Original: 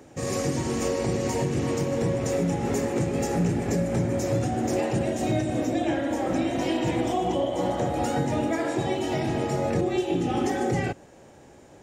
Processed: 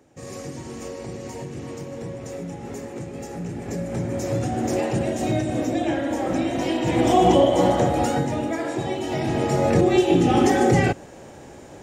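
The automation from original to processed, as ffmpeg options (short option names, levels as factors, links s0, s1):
-af "volume=8.41,afade=t=in:st=3.41:d=1.22:silence=0.316228,afade=t=in:st=6.85:d=0.4:silence=0.375837,afade=t=out:st=7.25:d=1.11:silence=0.298538,afade=t=in:st=9.07:d=0.86:silence=0.398107"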